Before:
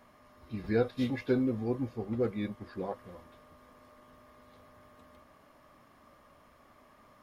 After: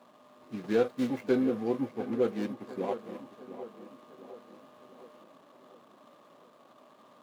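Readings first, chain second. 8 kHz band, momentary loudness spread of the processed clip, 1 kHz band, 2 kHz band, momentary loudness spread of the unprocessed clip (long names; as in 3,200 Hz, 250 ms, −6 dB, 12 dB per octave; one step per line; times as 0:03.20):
can't be measured, 22 LU, +3.5 dB, 0.0 dB, 14 LU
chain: running median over 25 samples
high-pass filter 140 Hz 24 dB per octave
low-shelf EQ 210 Hz −10 dB
tape delay 705 ms, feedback 56%, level −12 dB, low-pass 2,400 Hz
soft clipping −20 dBFS, distortion −22 dB
level +6 dB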